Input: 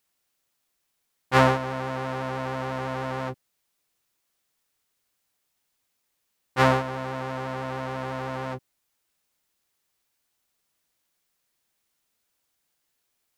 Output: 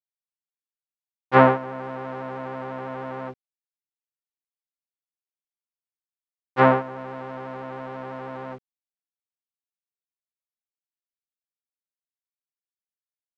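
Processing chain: treble ducked by the level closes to 2700 Hz, closed at -23.5 dBFS; HPF 180 Hz 12 dB/oct; bit-crush 8-bit; tape spacing loss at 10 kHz 27 dB; upward expander 1.5:1, over -37 dBFS; gain +7.5 dB

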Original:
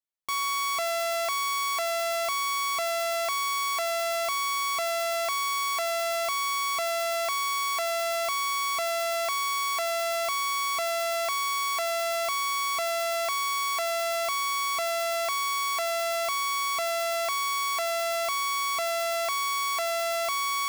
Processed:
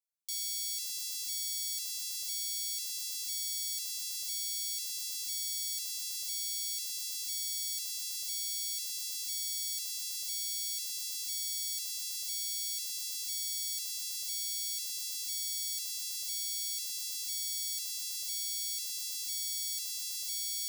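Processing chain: inverse Chebyshev high-pass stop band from 970 Hz, stop band 70 dB

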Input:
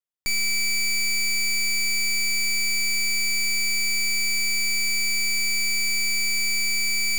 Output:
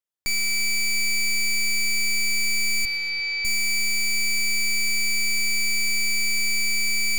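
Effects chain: 2.85–3.45 elliptic band-pass 460–4500 Hz; split-band echo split 2600 Hz, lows 0.343 s, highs 0.122 s, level -15.5 dB

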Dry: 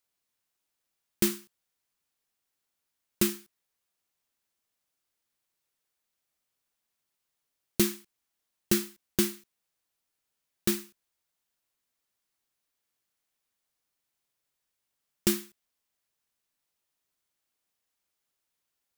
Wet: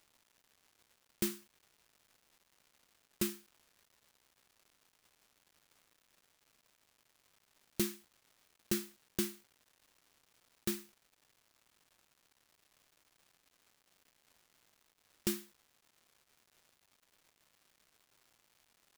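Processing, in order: crackle 430/s -46 dBFS; gain -9 dB

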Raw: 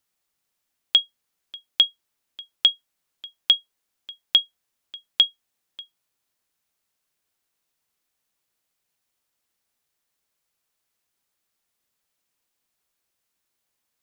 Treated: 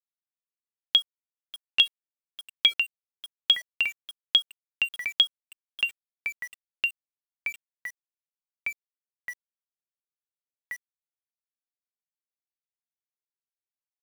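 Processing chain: echoes that change speed 0.656 s, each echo -3 st, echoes 3, each echo -6 dB; sample gate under -36.5 dBFS; gain -3 dB

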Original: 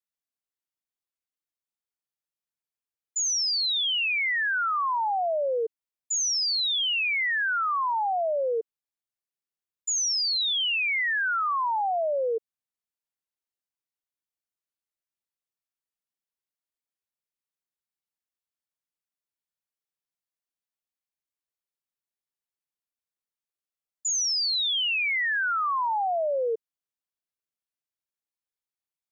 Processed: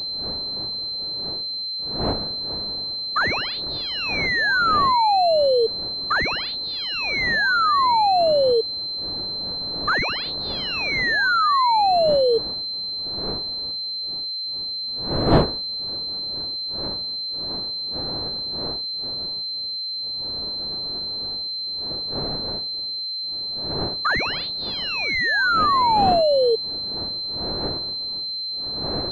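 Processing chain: wind noise 540 Hz -42 dBFS; pulse-width modulation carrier 4100 Hz; gain +8.5 dB

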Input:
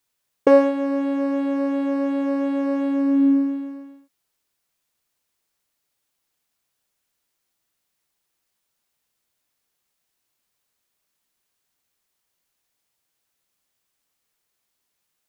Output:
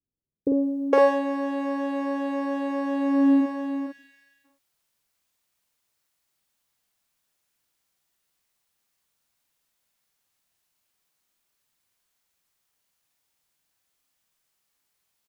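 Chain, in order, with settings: spectral gain 3.41–3.99, 200–1500 Hz -29 dB; doubler 48 ms -2.5 dB; bands offset in time lows, highs 0.46 s, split 380 Hz; gain -1.5 dB

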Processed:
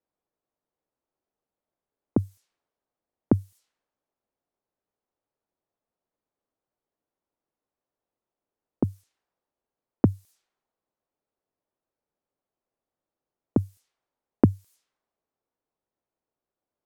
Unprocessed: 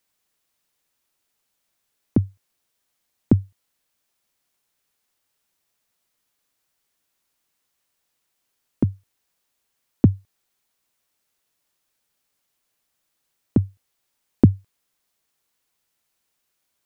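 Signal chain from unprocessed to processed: low-pass opened by the level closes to 670 Hz, open at -23 dBFS; tone controls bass -7 dB, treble +13 dB

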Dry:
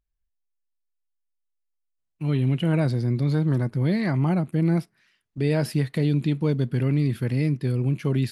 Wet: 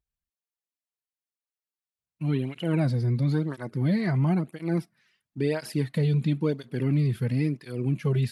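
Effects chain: tape flanging out of phase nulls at 0.98 Hz, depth 3.8 ms

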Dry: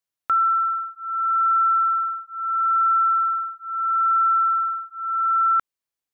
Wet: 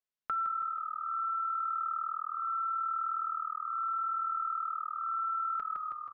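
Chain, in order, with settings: air absorption 110 m; comb 4.7 ms, depth 69%; frequency-shifting echo 0.16 s, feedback 53%, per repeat -39 Hz, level -6.5 dB; compressor 3:1, threshold -24 dBFS, peak gain reduction 7 dB; on a send at -12 dB: reverb RT60 2.3 s, pre-delay 7 ms; on the sum: gain -8.5 dB

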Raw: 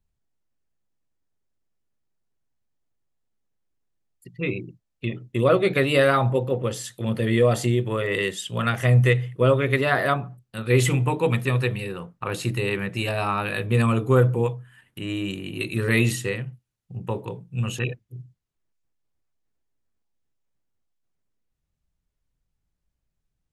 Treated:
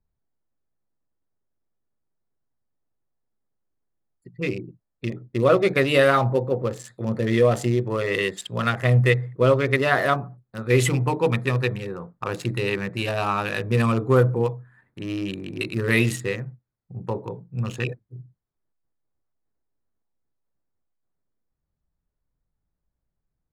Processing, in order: Wiener smoothing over 15 samples; low shelf 220 Hz -4 dB; gain +2 dB

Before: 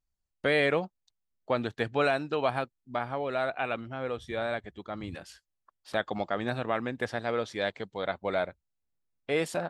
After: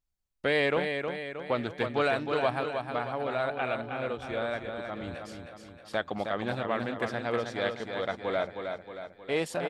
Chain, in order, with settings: feedback echo 0.314 s, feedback 52%, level -6 dB; Doppler distortion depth 0.13 ms; gain -1 dB

